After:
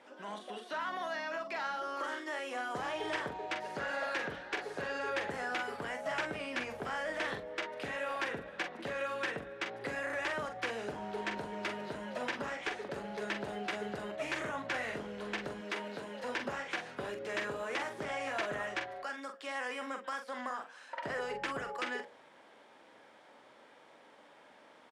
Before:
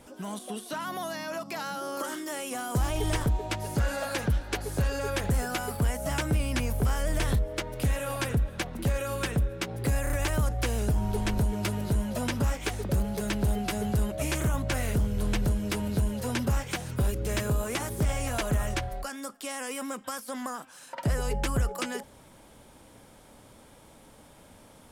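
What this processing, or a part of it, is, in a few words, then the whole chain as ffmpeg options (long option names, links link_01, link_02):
intercom: -filter_complex "[0:a]highpass=420,lowpass=3500,equalizer=frequency=1800:width_type=o:width=0.4:gain=5,asoftclip=type=tanh:threshold=-22.5dB,asplit=2[link_01][link_02];[link_02]adelay=44,volume=-7dB[link_03];[link_01][link_03]amix=inputs=2:normalize=0,bandreject=frequency=60.22:width_type=h:width=4,bandreject=frequency=120.44:width_type=h:width=4,bandreject=frequency=180.66:width_type=h:width=4,bandreject=frequency=240.88:width_type=h:width=4,bandreject=frequency=301.1:width_type=h:width=4,bandreject=frequency=361.32:width_type=h:width=4,bandreject=frequency=421.54:width_type=h:width=4,bandreject=frequency=481.76:width_type=h:width=4,bandreject=frequency=541.98:width_type=h:width=4,bandreject=frequency=602.2:width_type=h:width=4,bandreject=frequency=662.42:width_type=h:width=4,bandreject=frequency=722.64:width_type=h:width=4,asettb=1/sr,asplit=3[link_04][link_05][link_06];[link_04]atrim=end=15.614[link_07];[link_05]atrim=start=15.61:end=16.24,asetpts=PTS-STARTPTS,afade=type=in:duration=0.004:curve=qsin,afade=type=out:start_time=0.626:duration=0.004:curve=qsin,highpass=frequency=230:poles=1[link_08];[link_06]atrim=start=16.236[link_09];[link_07][link_08]acrossfade=duration=0.004:curve1=hsin:curve2=qsin[link_10];[link_10][link_09]acrossfade=duration=0.004:curve1=qsin:curve2=hsin,volume=-2.5dB"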